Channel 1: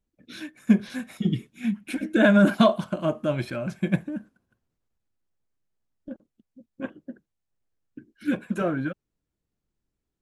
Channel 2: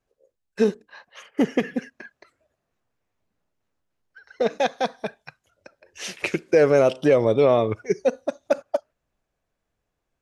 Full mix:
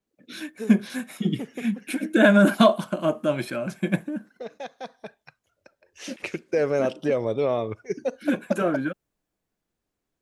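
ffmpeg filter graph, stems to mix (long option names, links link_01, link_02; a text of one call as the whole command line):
ffmpeg -i stem1.wav -i stem2.wav -filter_complex "[0:a]highpass=190,adynamicequalizer=threshold=0.00282:dfrequency=7600:dqfactor=0.7:tfrequency=7600:tqfactor=0.7:attack=5:release=100:ratio=0.375:range=3.5:mode=boostabove:tftype=highshelf,volume=2.5dB[link_01];[1:a]volume=-6.5dB,afade=type=in:start_time=4.76:duration=0.64:silence=0.398107[link_02];[link_01][link_02]amix=inputs=2:normalize=0" out.wav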